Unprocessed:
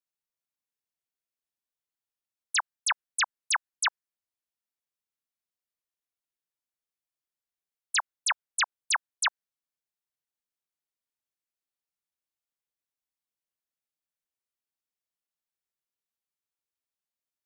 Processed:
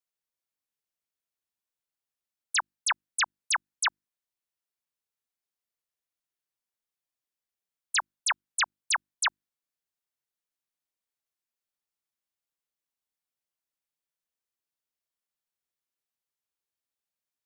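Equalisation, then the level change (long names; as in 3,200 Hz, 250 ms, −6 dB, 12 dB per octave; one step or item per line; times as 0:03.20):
mains-hum notches 50/100/150/200/250/300/350 Hz
0.0 dB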